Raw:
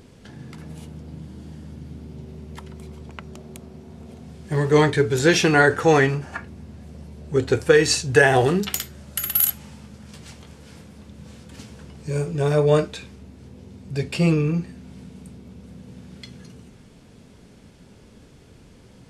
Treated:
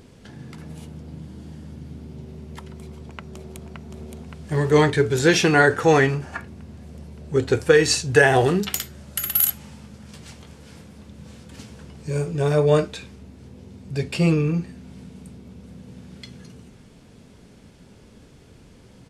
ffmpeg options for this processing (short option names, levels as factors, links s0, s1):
-filter_complex "[0:a]asplit=2[s0][s1];[s1]afade=t=in:st=2.76:d=0.01,afade=t=out:st=3.65:d=0.01,aecho=0:1:570|1140|1710|2280|2850|3420|3990|4560|5130|5700|6270|6840:0.595662|0.416964|0.291874|0.204312|0.143018|0.100113|0.0700791|0.0490553|0.0343387|0.0240371|0.016826|0.0117782[s2];[s0][s2]amix=inputs=2:normalize=0"